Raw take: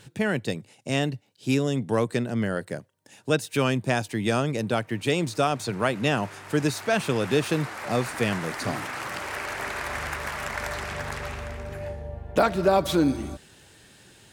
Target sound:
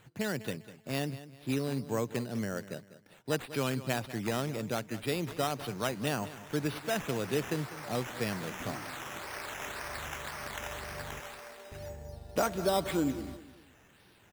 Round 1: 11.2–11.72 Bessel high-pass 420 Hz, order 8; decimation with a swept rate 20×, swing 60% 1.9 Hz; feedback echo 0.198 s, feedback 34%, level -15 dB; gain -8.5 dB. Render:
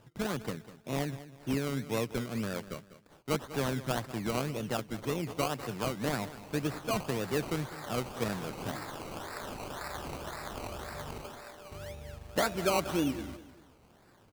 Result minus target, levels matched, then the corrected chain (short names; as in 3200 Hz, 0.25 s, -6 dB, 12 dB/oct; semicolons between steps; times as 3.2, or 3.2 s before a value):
decimation with a swept rate: distortion +7 dB
11.2–11.72 Bessel high-pass 420 Hz, order 8; decimation with a swept rate 8×, swing 60% 1.9 Hz; feedback echo 0.198 s, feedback 34%, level -15 dB; gain -8.5 dB